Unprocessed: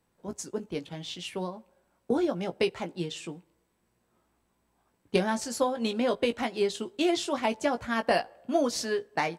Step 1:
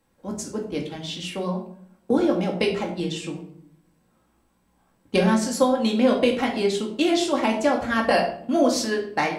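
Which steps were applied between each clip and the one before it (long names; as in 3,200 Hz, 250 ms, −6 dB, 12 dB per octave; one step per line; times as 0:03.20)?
rectangular room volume 1,000 cubic metres, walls furnished, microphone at 2.2 metres
level +3.5 dB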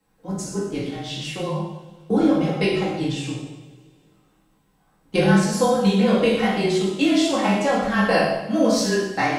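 frequency shifter −26 Hz
coupled-rooms reverb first 0.82 s, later 2.5 s, from −20 dB, DRR −3.5 dB
level −3 dB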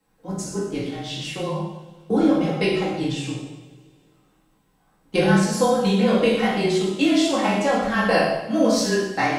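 mains-hum notches 50/100/150/200 Hz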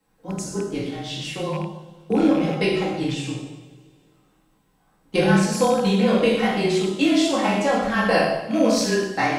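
loose part that buzzes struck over −25 dBFS, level −27 dBFS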